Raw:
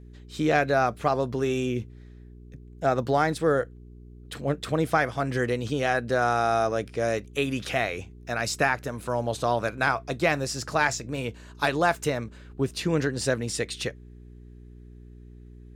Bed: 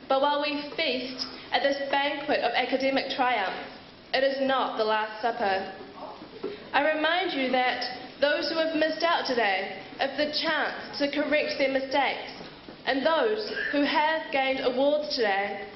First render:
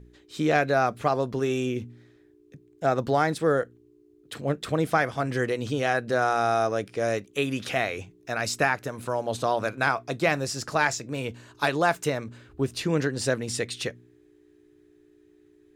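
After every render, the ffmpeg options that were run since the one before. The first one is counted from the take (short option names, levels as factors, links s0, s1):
-af "bandreject=f=60:t=h:w=4,bandreject=f=120:t=h:w=4,bandreject=f=180:t=h:w=4,bandreject=f=240:t=h:w=4"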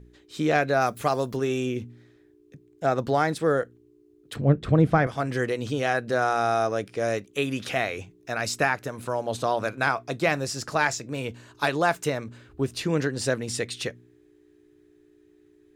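-filter_complex "[0:a]asplit=3[s0][s1][s2];[s0]afade=t=out:st=0.8:d=0.02[s3];[s1]aemphasis=mode=production:type=50fm,afade=t=in:st=0.8:d=0.02,afade=t=out:st=1.36:d=0.02[s4];[s2]afade=t=in:st=1.36:d=0.02[s5];[s3][s4][s5]amix=inputs=3:normalize=0,asettb=1/sr,asplit=3[s6][s7][s8];[s6]atrim=end=4.364[s9];[s7]atrim=start=4.36:end=5.07,asetpts=PTS-STARTPTS,afade=t=in:d=0.004:c=qsin,afade=t=out:st=0.706:d=0.004:c=qsin,aemphasis=mode=reproduction:type=riaa[s10];[s8]atrim=start=5.066[s11];[s9][s10]acrossfade=d=0.004:c1=hsin:c2=qsin[s12];[s12][s11]acrossfade=d=0.004:c1=qsin:c2=hsin"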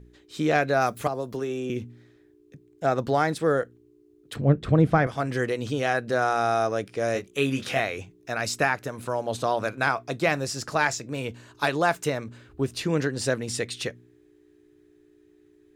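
-filter_complex "[0:a]asettb=1/sr,asplit=3[s0][s1][s2];[s0]atrim=end=1.074[s3];[s1]atrim=start=1.07:end=1.7,asetpts=PTS-STARTPTS,afade=t=in:d=0.004:c=qsin,afade=t=out:st=0.626:d=0.004:c=qsin,acrossover=split=270|960[s4][s5][s6];[s4]acompressor=threshold=0.0112:ratio=4[s7];[s5]acompressor=threshold=0.0398:ratio=4[s8];[s6]acompressor=threshold=0.00631:ratio=4[s9];[s7][s8][s9]amix=inputs=3:normalize=0[s10];[s2]atrim=start=1.696[s11];[s3][s10]acrossfade=d=0.004:c1=hsin:c2=qsin[s12];[s12][s11]acrossfade=d=0.004:c1=qsin:c2=hsin,asettb=1/sr,asplit=3[s13][s14][s15];[s13]atrim=end=7.134[s16];[s14]atrim=start=7.13:end=7.8,asetpts=PTS-STARTPTS,afade=t=in:d=0.004:c=qsin,afade=t=out:st=0.666:d=0.004:c=qsin,asplit=2[s17][s18];[s18]adelay=22,volume=0.562[s19];[s17][s19]amix=inputs=2:normalize=0,atrim=end_sample=29547[s20];[s15]atrim=start=7.796[s21];[s16][s20]acrossfade=d=0.004:c1=hsin:c2=qsin[s22];[s22][s21]acrossfade=d=0.004:c1=qsin:c2=hsin"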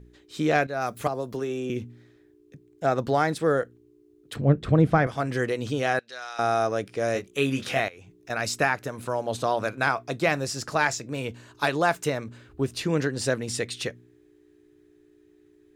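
-filter_complex "[0:a]asettb=1/sr,asplit=3[s0][s1][s2];[s0]atrim=end=5.994[s3];[s1]atrim=start=5.99:end=6.39,asetpts=PTS-STARTPTS,afade=t=in:d=0.004:c=qsin,afade=t=out:st=0.396:d=0.004:c=qsin,bandpass=f=3900:t=q:w=1.4[s4];[s2]atrim=start=6.386[s5];[s3][s4]acrossfade=d=0.004:c1=hsin:c2=qsin[s6];[s6][s5]acrossfade=d=0.004:c1=qsin:c2=hsin,asettb=1/sr,asplit=3[s7][s8][s9];[s7]atrim=end=7.884[s10];[s8]atrim=start=7.88:end=8.3,asetpts=PTS-STARTPTS,afade=t=in:d=0.004:c=qsin,afade=t=out:st=0.416:d=0.004:c=qsin,acompressor=threshold=0.00708:ratio=8:attack=3.2:release=140:knee=1:detection=peak[s11];[s9]atrim=start=8.296[s12];[s10][s11]acrossfade=d=0.004:c1=hsin:c2=qsin[s13];[s13][s12]acrossfade=d=0.004:c1=qsin:c2=hsin,asplit=2[s14][s15];[s14]atrim=end=0.67,asetpts=PTS-STARTPTS,afade=t=out:st=0.666:d=0.004:c=hsin:silence=0.251189[s16];[s15]atrim=start=0.67,asetpts=PTS-STARTPTS,afade=t=in:d=0.4:silence=0.251189[s17];[s16][s17]concat=n=2:v=0:a=1"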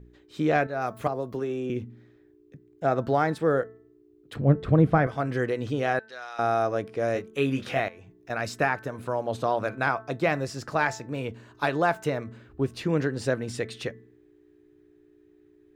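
-af "equalizer=f=8900:t=o:w=2.5:g=-10.5,bandreject=f=219.7:t=h:w=4,bandreject=f=439.4:t=h:w=4,bandreject=f=659.1:t=h:w=4,bandreject=f=878.8:t=h:w=4,bandreject=f=1098.5:t=h:w=4,bandreject=f=1318.2:t=h:w=4,bandreject=f=1537.9:t=h:w=4,bandreject=f=1757.6:t=h:w=4,bandreject=f=1977.3:t=h:w=4"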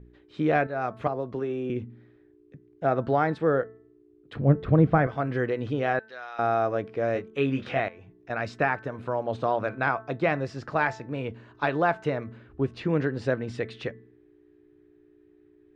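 -af "lowpass=3300"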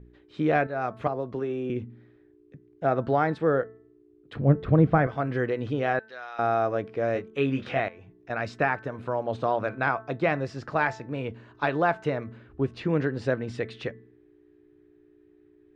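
-af anull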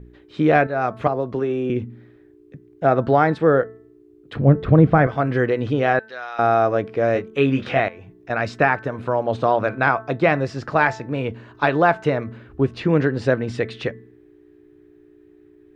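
-af "volume=2.37,alimiter=limit=0.794:level=0:latency=1"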